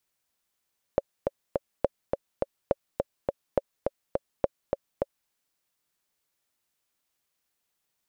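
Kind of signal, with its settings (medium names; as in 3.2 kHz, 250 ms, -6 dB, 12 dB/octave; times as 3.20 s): metronome 208 bpm, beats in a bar 3, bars 5, 556 Hz, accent 3.5 dB -8.5 dBFS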